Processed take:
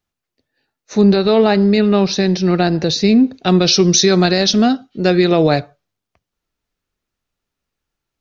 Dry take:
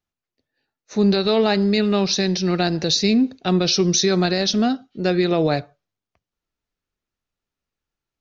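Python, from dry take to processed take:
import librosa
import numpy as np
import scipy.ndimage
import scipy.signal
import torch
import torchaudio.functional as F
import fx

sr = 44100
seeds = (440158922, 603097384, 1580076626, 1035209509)

y = fx.high_shelf(x, sr, hz=3000.0, db=-9.5, at=(1.01, 3.34))
y = y * 10.0 ** (6.0 / 20.0)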